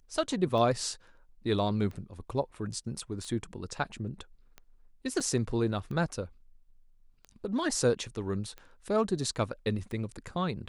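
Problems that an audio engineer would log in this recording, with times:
tick 45 rpm
5.20–5.21 s: dropout 5 ms

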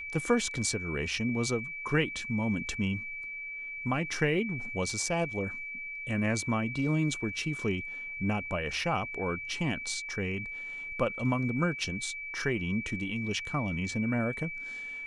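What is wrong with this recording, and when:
whine 2.3 kHz -37 dBFS

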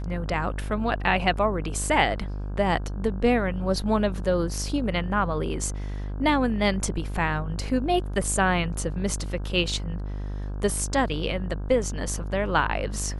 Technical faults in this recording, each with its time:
buzz 50 Hz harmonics 33 -31 dBFS

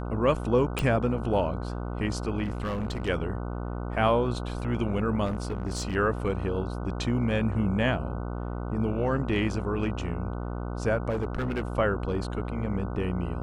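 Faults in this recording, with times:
buzz 60 Hz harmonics 25 -33 dBFS
0.79 s: pop -13 dBFS
2.43–3.09 s: clipped -26.5 dBFS
5.25–5.96 s: clipped -25.5 dBFS
11.09–11.62 s: clipped -24.5 dBFS

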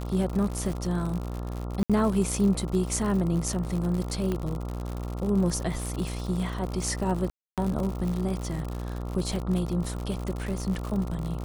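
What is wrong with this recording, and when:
buzz 60 Hz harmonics 23 -33 dBFS
crackle 100 per s -31 dBFS
1.83–1.90 s: dropout 66 ms
4.32 s: pop -17 dBFS
7.30–7.58 s: dropout 277 ms
9.36 s: dropout 2.4 ms

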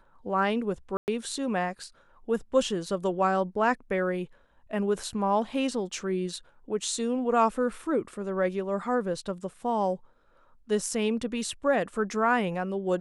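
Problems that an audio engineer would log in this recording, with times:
0.97–1.08 s: dropout 109 ms

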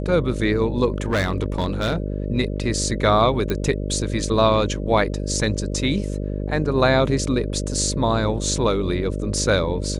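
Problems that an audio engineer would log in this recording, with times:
buzz 50 Hz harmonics 12 -26 dBFS
0.94–1.96 s: clipped -16.5 dBFS
3.50 s: pop -11 dBFS

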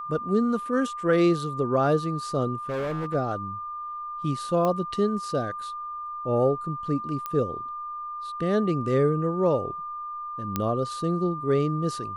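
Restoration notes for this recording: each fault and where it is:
whine 1.2 kHz -32 dBFS
2.69–3.15 s: clipped -26 dBFS
4.65 s: pop -15 dBFS
7.26 s: pop -17 dBFS
10.56 s: pop -11 dBFS

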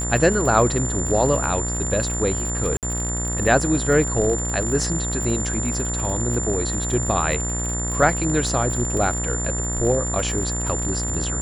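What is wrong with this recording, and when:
buzz 60 Hz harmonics 33 -27 dBFS
crackle 61 per s -26 dBFS
whine 7.2 kHz -26 dBFS
2.77–2.83 s: dropout 58 ms

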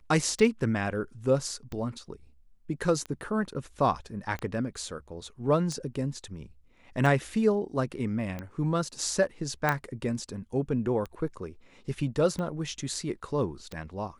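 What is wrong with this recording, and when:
tick 45 rpm
9.69 s: pop -11 dBFS

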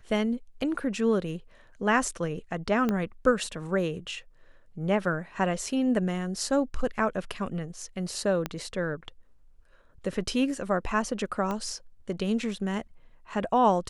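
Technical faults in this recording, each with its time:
2.89 s: pop -15 dBFS
8.46 s: pop -15 dBFS
11.51 s: pop -19 dBFS

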